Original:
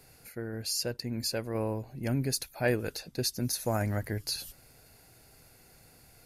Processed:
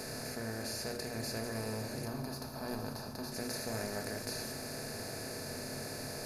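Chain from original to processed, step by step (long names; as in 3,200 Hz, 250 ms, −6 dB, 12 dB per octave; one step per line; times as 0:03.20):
compressor on every frequency bin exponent 0.2
hum removal 151.9 Hz, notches 32
noise gate −16 dBFS, range −30 dB
0:02.05–0:03.32: octave-band graphic EQ 500/1,000/2,000/8,000 Hz −7/+8/−11/−11 dB
convolution reverb RT60 0.60 s, pre-delay 5 ms, DRR 4 dB
level +13.5 dB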